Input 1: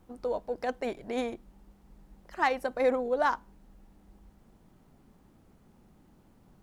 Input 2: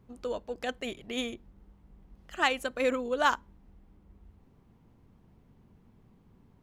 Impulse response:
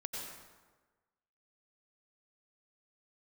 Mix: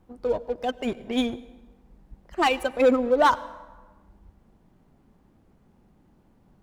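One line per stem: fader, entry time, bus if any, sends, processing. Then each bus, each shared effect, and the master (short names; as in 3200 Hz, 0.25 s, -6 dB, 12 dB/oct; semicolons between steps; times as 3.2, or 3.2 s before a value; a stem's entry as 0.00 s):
-0.5 dB, 0.00 s, send -16 dB, notch 1300 Hz, Q 27
0.0 dB, 0.00 s, send -16.5 dB, per-bin expansion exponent 2; sample leveller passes 3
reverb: on, RT60 1.3 s, pre-delay 83 ms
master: high shelf 3900 Hz -7.5 dB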